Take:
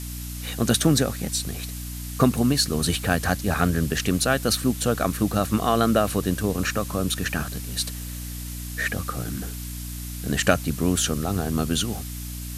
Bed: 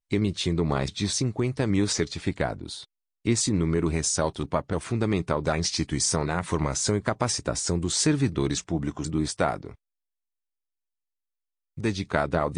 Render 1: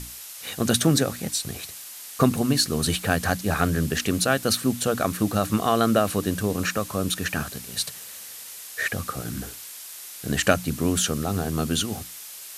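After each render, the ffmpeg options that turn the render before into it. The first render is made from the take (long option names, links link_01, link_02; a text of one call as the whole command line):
ffmpeg -i in.wav -af "bandreject=frequency=60:width_type=h:width=6,bandreject=frequency=120:width_type=h:width=6,bandreject=frequency=180:width_type=h:width=6,bandreject=frequency=240:width_type=h:width=6,bandreject=frequency=300:width_type=h:width=6" out.wav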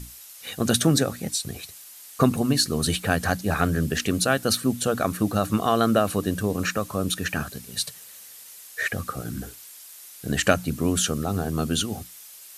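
ffmpeg -i in.wav -af "afftdn=noise_reduction=7:noise_floor=-40" out.wav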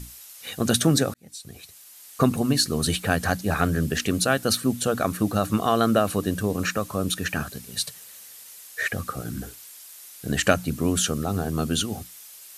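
ffmpeg -i in.wav -filter_complex "[0:a]asplit=2[link_01][link_02];[link_01]atrim=end=1.14,asetpts=PTS-STARTPTS,afade=type=out:start_time=1.136:duration=0.004:curve=hsin[link_03];[link_02]atrim=start=1.14,asetpts=PTS-STARTPTS,afade=type=in:duration=1.49:curve=qsin[link_04];[link_03][link_04]concat=n=2:v=0:a=1" out.wav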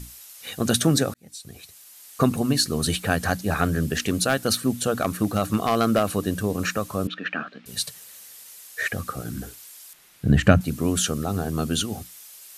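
ffmpeg -i in.wav -filter_complex "[0:a]asettb=1/sr,asplit=3[link_01][link_02][link_03];[link_01]atrim=end=3.934[link_04];[link_02]atrim=start=3.93:end=6.03,asetpts=PTS-STARTPTS,afade=type=in:duration=0.004:curve=qsin,afade=type=out:start_time=2.096:duration=0.004:curve=qsin,aeval=exprs='0.266*(abs(mod(val(0)/0.266+3,4)-2)-1)':channel_layout=same[link_05];[link_03]atrim=start=6.026[link_06];[link_04][link_05]acrossfade=duration=0.004:curve1=hsin:curve2=qsin[link_07];[link_07][link_06]acrossfade=duration=0.004:curve1=qsin:curve2=hsin,asettb=1/sr,asplit=3[link_08][link_09][link_10];[link_08]atrim=end=7.074[link_11];[link_09]atrim=start=7.07:end=7.66,asetpts=PTS-STARTPTS,afade=type=in:duration=0.004:curve=qsin,afade=type=out:start_time=0.586:duration=0.004:curve=qsin,highpass=frequency=220:width=0.5412,highpass=frequency=220:width=1.3066,equalizer=frequency=390:width_type=q:width=4:gain=-7,equalizer=frequency=910:width_type=q:width=4:gain=-6,equalizer=frequency=1300:width_type=q:width=4:gain=4,lowpass=frequency=3200:width=0.5412,lowpass=frequency=3200:width=1.3066[link_12];[link_10]atrim=start=7.656[link_13];[link_11][link_12]acrossfade=duration=0.004:curve1=hsin:curve2=qsin[link_14];[link_14][link_13]acrossfade=duration=0.004:curve1=qsin:curve2=hsin,asettb=1/sr,asplit=3[link_15][link_16][link_17];[link_15]atrim=end=9.934[link_18];[link_16]atrim=start=9.93:end=10.61,asetpts=PTS-STARTPTS,afade=type=in:duration=0.004:curve=qsin,afade=type=out:start_time=0.676:duration=0.004:curve=qsin,bass=frequency=250:gain=13,treble=frequency=4000:gain=-12[link_19];[link_17]atrim=start=10.606[link_20];[link_18][link_19]acrossfade=duration=0.004:curve1=hsin:curve2=qsin[link_21];[link_21][link_20]acrossfade=duration=0.004:curve1=qsin:curve2=hsin" out.wav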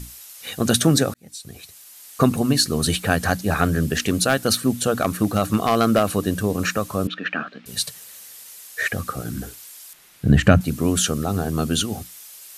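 ffmpeg -i in.wav -af "volume=3dB,alimiter=limit=-1dB:level=0:latency=1" out.wav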